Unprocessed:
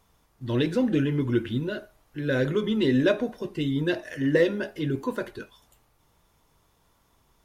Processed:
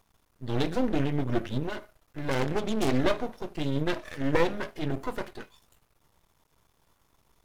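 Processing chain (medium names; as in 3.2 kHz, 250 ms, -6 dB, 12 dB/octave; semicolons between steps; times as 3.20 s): 2.31–2.99 s: self-modulated delay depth 0.41 ms; half-wave rectifier; trim +1 dB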